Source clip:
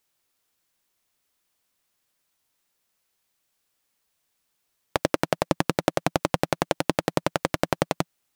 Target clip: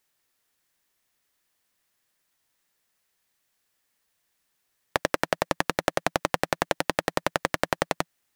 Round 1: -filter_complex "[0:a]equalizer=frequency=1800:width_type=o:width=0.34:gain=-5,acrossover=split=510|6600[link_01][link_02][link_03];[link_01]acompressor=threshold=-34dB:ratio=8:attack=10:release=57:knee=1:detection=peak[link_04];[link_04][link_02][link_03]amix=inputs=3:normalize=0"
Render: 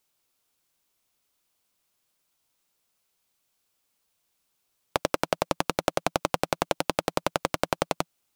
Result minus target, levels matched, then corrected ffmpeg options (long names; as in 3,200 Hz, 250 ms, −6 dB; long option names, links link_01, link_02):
2,000 Hz band −4.0 dB
-filter_complex "[0:a]equalizer=frequency=1800:width_type=o:width=0.34:gain=5.5,acrossover=split=510|6600[link_01][link_02][link_03];[link_01]acompressor=threshold=-34dB:ratio=8:attack=10:release=57:knee=1:detection=peak[link_04];[link_04][link_02][link_03]amix=inputs=3:normalize=0"